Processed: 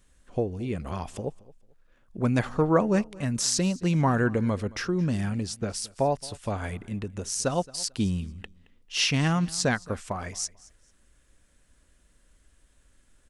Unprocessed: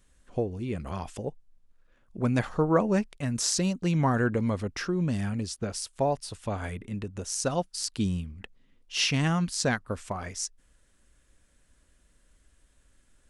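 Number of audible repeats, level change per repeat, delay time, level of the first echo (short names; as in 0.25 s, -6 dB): 2, -12.0 dB, 0.221 s, -22.0 dB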